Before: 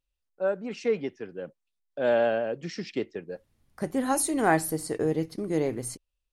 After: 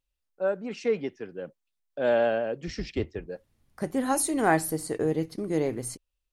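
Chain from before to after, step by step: 2.67–3.27 octaver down 2 oct, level -1 dB; 4.84–5.29 notch 5300 Hz, Q 10

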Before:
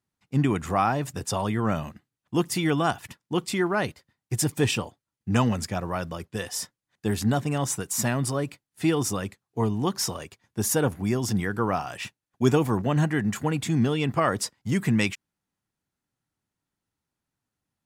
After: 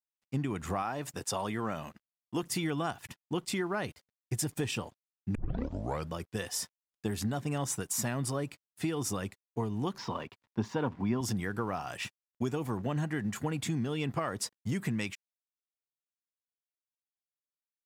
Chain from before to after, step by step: 0.82–2.43 low shelf 170 Hz -11 dB; compressor 10:1, threshold -26 dBFS, peak gain reduction 12.5 dB; 9.98–11.21 speaker cabinet 110–4100 Hz, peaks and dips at 110 Hz +5 dB, 240 Hz +7 dB, 980 Hz +10 dB; crossover distortion -60 dBFS; 5.35 tape start 0.75 s; gain -2.5 dB

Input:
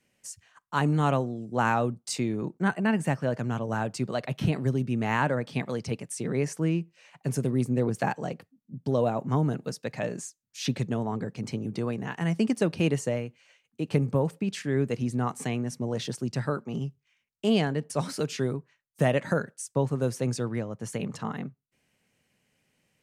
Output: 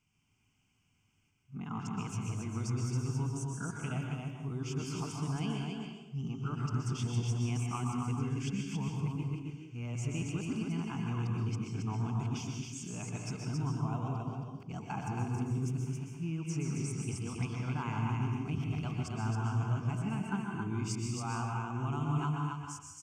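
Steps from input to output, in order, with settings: whole clip reversed; low shelf 61 Hz +8.5 dB; compressor, threshold -27 dBFS, peak gain reduction 10 dB; bell 93 Hz +7 dB 0.3 oct; fixed phaser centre 2700 Hz, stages 8; echo 0.272 s -4 dB; plate-style reverb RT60 0.86 s, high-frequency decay 0.85×, pre-delay 0.11 s, DRR 1.5 dB; gain -4.5 dB

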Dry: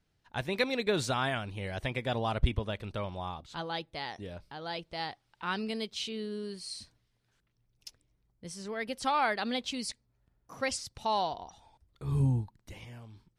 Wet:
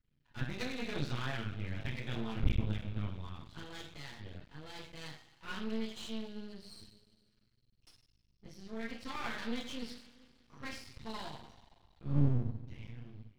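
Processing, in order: passive tone stack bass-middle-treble 6-0-2; flange 0.2 Hz, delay 8 ms, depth 1.5 ms, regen +47%; air absorption 270 m; two-slope reverb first 0.5 s, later 2.3 s, from -18 dB, DRR -5 dB; half-wave rectifier; gain +16.5 dB

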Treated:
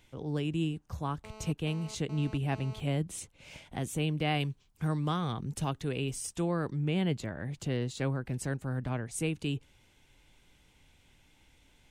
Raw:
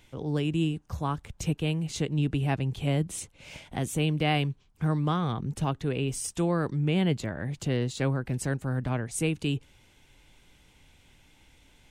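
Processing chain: 1.24–2.8 GSM buzz -45 dBFS; 4.4–6.11 high shelf 3700 Hz +8 dB; gain -4.5 dB

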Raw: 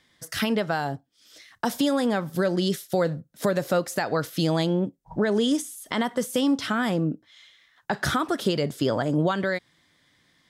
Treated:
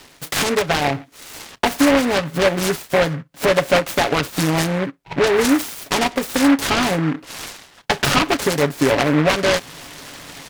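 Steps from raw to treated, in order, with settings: in parallel at +2.5 dB: compressor, threshold -31 dBFS, peak gain reduction 12 dB; on the sum: high shelf 8900 Hz -7.5 dB; reverse; upward compressor, threshold -28 dBFS; reverse; low shelf 180 Hz -10.5 dB; comb 7.1 ms, depth 73%; noise-modulated delay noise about 1300 Hz, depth 0.14 ms; gain +4 dB

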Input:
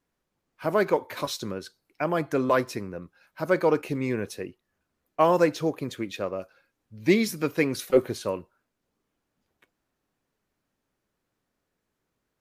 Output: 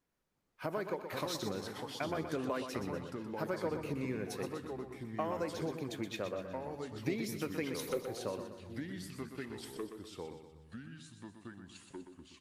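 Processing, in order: compressor, threshold -30 dBFS, peak gain reduction 16 dB; echoes that change speed 0.367 s, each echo -3 st, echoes 2, each echo -6 dB; on a send: feedback echo 0.123 s, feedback 49%, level -8.5 dB; on the sum: gain -4.5 dB

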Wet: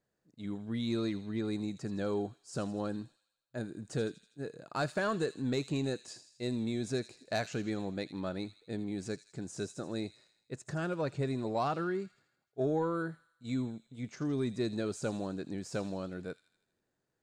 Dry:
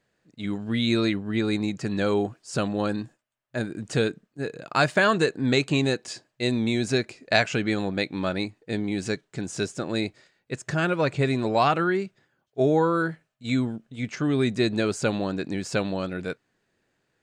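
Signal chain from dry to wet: soft clip -10.5 dBFS, distortion -24 dB; bell 2500 Hz -8.5 dB 1.4 oct; thin delay 81 ms, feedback 57%, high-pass 3100 Hz, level -10 dB; gain -9 dB

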